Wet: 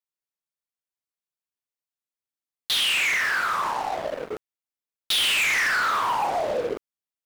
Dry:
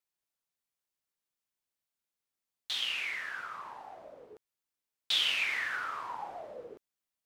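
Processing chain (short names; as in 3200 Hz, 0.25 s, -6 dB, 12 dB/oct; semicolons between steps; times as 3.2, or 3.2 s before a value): sample leveller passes 5; limiter -22.5 dBFS, peak gain reduction 5 dB; gain +3 dB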